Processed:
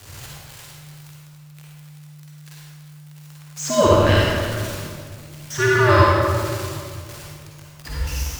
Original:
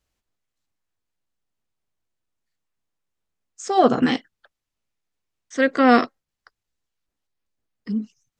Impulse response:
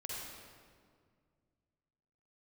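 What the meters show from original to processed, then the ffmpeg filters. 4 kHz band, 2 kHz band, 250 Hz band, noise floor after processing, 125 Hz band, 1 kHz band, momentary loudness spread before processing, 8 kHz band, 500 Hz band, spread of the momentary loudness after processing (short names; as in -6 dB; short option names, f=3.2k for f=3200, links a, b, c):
+7.5 dB, +5.5 dB, -3.0 dB, -43 dBFS, +19.5 dB, +1.5 dB, 16 LU, +13.5 dB, +4.5 dB, 23 LU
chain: -filter_complex "[0:a]aeval=exprs='val(0)+0.5*0.0299*sgn(val(0))':c=same,acrossover=split=140|670[a][b][c];[c]dynaudnorm=f=140:g=3:m=9dB[d];[a][b][d]amix=inputs=3:normalize=0,afreqshift=-150[e];[1:a]atrim=start_sample=2205,asetrate=42336,aresample=44100[f];[e][f]afir=irnorm=-1:irlink=0,volume=-1.5dB"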